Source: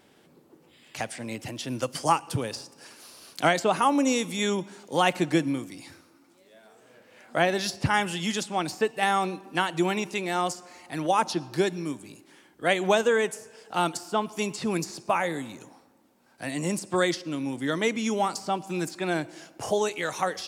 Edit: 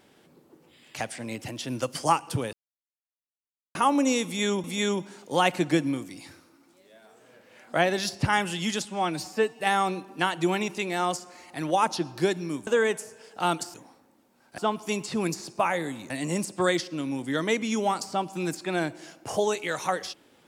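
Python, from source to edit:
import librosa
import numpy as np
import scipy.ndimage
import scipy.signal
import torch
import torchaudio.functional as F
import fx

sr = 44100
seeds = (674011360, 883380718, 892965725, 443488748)

y = fx.edit(x, sr, fx.silence(start_s=2.53, length_s=1.22),
    fx.repeat(start_s=4.25, length_s=0.39, count=2),
    fx.stretch_span(start_s=8.46, length_s=0.5, factor=1.5),
    fx.cut(start_s=12.03, length_s=0.98),
    fx.move(start_s=15.6, length_s=0.84, to_s=14.08), tone=tone)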